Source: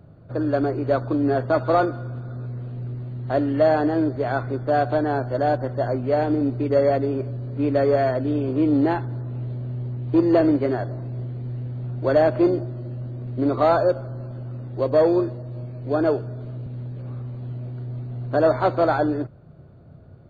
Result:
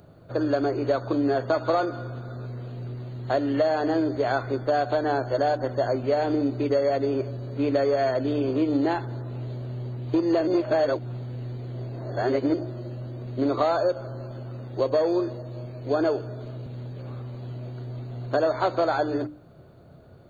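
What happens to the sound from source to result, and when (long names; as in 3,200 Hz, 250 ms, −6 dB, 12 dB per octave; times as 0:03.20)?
0:10.47–0:12.54: reverse
whole clip: bass and treble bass −7 dB, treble +12 dB; mains-hum notches 50/100/150/200/250/300 Hz; downward compressor, threshold −22 dBFS; level +2.5 dB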